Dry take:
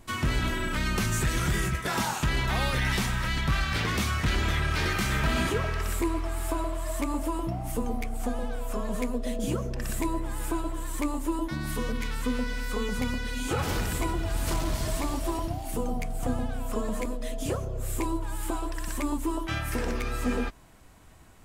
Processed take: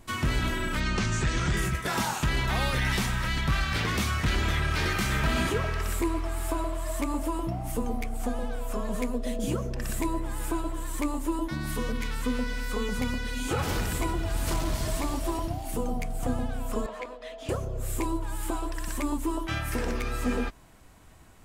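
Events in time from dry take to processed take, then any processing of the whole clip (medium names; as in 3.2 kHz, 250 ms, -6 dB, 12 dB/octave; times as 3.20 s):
0.80–1.57 s: low-pass 7.1 kHz 24 dB/octave
16.86–17.49 s: three-band isolator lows -21 dB, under 450 Hz, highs -21 dB, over 4.6 kHz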